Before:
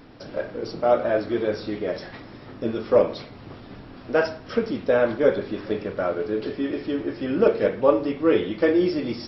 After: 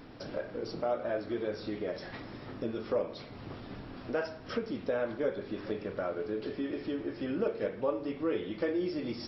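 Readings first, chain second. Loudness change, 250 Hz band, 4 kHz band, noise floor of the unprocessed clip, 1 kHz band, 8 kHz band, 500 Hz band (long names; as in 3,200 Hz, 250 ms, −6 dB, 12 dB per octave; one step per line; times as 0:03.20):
−12.0 dB, −10.0 dB, −8.5 dB, −43 dBFS, −11.5 dB, can't be measured, −12.0 dB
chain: downward compressor 2 to 1, threshold −34 dBFS, peak gain reduction 12.5 dB
level −2.5 dB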